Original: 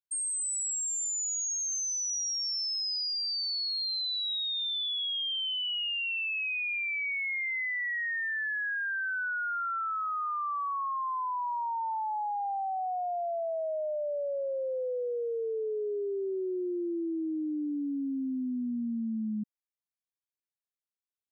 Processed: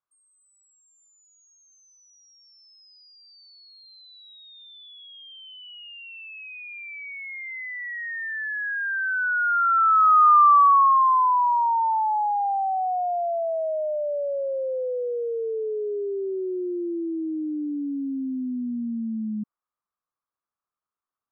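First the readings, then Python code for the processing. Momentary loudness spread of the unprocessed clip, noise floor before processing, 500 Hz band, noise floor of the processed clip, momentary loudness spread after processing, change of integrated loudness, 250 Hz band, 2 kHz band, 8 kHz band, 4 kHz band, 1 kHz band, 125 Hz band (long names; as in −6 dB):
4 LU, below −85 dBFS, +5.5 dB, below −85 dBFS, 21 LU, +8.5 dB, +4.0 dB, +3.0 dB, below −25 dB, below −10 dB, +13.5 dB, can't be measured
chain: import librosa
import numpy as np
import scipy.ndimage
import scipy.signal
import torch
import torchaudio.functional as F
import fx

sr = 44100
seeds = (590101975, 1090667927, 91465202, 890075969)

y = fx.lowpass_res(x, sr, hz=1200.0, q=5.6)
y = y * 10.0 ** (3.5 / 20.0)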